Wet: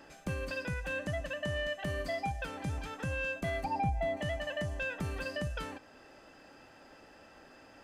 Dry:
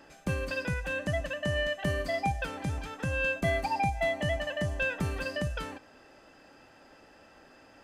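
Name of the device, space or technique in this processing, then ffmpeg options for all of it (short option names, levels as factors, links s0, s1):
soft clipper into limiter: -filter_complex "[0:a]asoftclip=type=tanh:threshold=0.106,alimiter=level_in=1.41:limit=0.0631:level=0:latency=1:release=470,volume=0.708,asettb=1/sr,asplit=3[s0][s1][s2];[s0]atrim=end=3.644[s3];[s1]atrim=start=3.64:end=4.17,asetpts=PTS-STARTPTS,afade=t=in:d=0.004:c=qsin,afade=t=out:st=0.526:d=0.004:c=qsin,tiltshelf=f=970:g=7[s4];[s2]atrim=start=4.166[s5];[s3][s4]acrossfade=d=0.004:c1=hsin:c2=qsin[s6];[s6][s5]acrossfade=d=0.004:c1=qsin:c2=hsin"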